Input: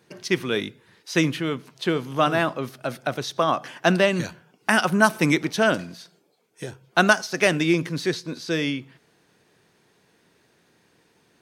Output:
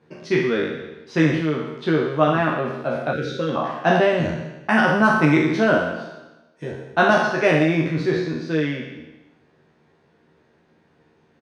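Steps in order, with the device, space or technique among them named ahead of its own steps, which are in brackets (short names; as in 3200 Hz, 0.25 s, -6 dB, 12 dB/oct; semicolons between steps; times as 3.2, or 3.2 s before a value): spectral trails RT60 1.07 s; through cloth (LPF 6700 Hz 12 dB/oct; high shelf 2800 Hz -17 dB); doubler 13 ms -2.5 dB; spectral gain 3.13–3.56, 580–1300 Hz -21 dB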